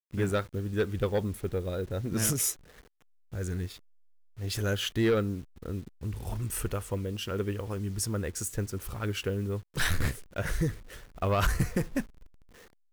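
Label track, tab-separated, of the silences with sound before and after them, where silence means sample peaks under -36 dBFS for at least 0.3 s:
2.530000	3.330000	silence
3.740000	4.390000	silence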